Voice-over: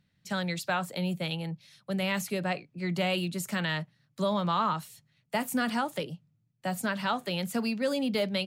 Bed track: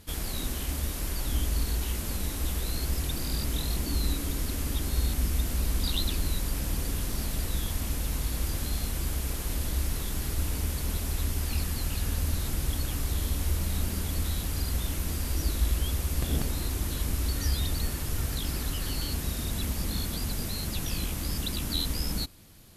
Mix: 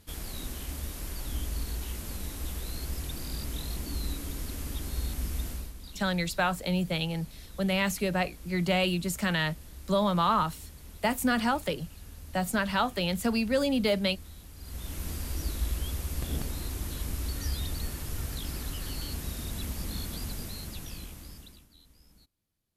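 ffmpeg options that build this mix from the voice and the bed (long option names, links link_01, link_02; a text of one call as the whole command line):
ffmpeg -i stem1.wav -i stem2.wav -filter_complex "[0:a]adelay=5700,volume=2.5dB[link_01];[1:a]volume=7dB,afade=type=out:start_time=5.47:duration=0.26:silence=0.266073,afade=type=in:start_time=14.58:duration=0.47:silence=0.237137,afade=type=out:start_time=20.24:duration=1.44:silence=0.0562341[link_02];[link_01][link_02]amix=inputs=2:normalize=0" out.wav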